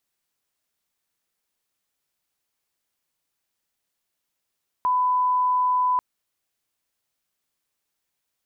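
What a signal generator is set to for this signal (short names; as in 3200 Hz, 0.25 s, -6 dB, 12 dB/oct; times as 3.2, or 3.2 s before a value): line-up tone -18 dBFS 1.14 s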